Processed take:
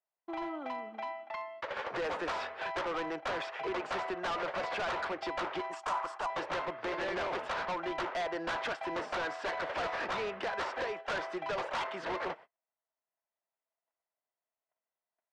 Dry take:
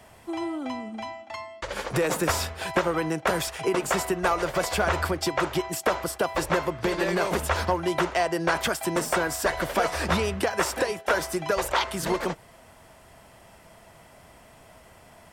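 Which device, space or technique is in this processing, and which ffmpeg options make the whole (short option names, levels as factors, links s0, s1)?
walkie-talkie: -filter_complex "[0:a]highpass=510,lowpass=2300,asoftclip=type=hard:threshold=0.0299,agate=range=0.00891:threshold=0.00398:ratio=16:detection=peak,lowpass=5500,asettb=1/sr,asplit=3[s0][s1][s2];[s0]atrim=end=5.714[s3];[s1]atrim=start=5.71:end=6.3,asetpts=PTS-STARTPTS,afade=t=in:d=0.004:c=qsin,afade=t=out:st=0.586:d=0.004:c=qsin,equalizer=f=125:t=o:w=1:g=-11,equalizer=f=250:t=o:w=1:g=-3,equalizer=f=500:t=o:w=1:g=-9,equalizer=f=1000:t=o:w=1:g=9,equalizer=f=2000:t=o:w=1:g=-4,equalizer=f=4000:t=o:w=1:g=-5,equalizer=f=8000:t=o:w=1:g=9[s4];[s2]atrim=start=6.296[s5];[s3][s4]acrossfade=d=0.004:c1=hsin:c2=qsin[s6];[s6][s5]acrossfade=d=0.004:c1=qsin:c2=hsin,volume=0.841"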